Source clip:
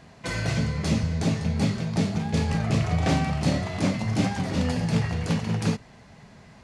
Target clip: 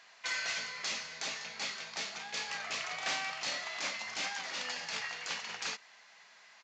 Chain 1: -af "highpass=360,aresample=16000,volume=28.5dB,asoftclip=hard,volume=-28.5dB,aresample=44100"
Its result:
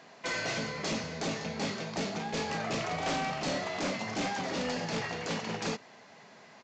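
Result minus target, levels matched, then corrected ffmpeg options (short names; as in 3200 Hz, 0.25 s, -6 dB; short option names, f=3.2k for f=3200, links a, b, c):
500 Hz band +11.0 dB
-af "highpass=1.4k,aresample=16000,volume=28.5dB,asoftclip=hard,volume=-28.5dB,aresample=44100"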